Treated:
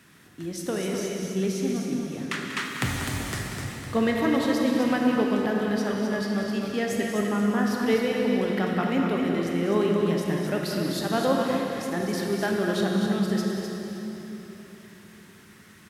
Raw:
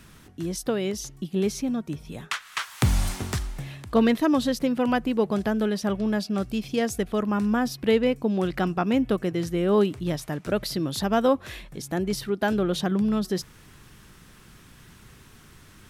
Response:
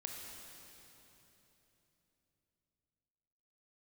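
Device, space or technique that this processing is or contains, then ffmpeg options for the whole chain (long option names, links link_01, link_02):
stadium PA: -filter_complex "[0:a]highpass=130,equalizer=frequency=1900:width_type=o:width=0.41:gain=5.5,aecho=1:1:189.5|253.6:0.282|0.501[link_01];[1:a]atrim=start_sample=2205[link_02];[link_01][link_02]afir=irnorm=-1:irlink=0"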